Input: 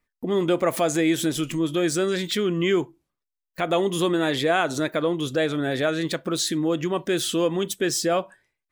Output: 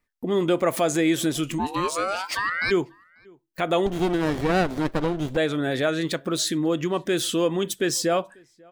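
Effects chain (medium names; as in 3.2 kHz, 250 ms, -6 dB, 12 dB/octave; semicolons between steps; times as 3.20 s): 1.58–2.70 s: ring modulator 530 Hz -> 2 kHz; echo from a far wall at 93 m, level -28 dB; 3.86–5.37 s: sliding maximum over 33 samples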